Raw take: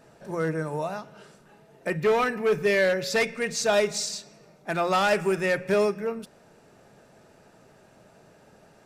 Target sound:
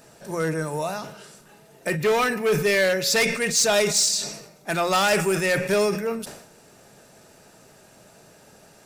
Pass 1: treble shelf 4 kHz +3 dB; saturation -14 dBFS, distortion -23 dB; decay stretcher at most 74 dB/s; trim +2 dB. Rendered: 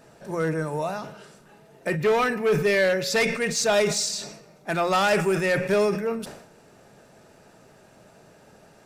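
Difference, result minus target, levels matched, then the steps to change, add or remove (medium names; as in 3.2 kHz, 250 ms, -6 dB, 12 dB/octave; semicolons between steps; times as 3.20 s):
8 kHz band -5.0 dB
change: treble shelf 4 kHz +13.5 dB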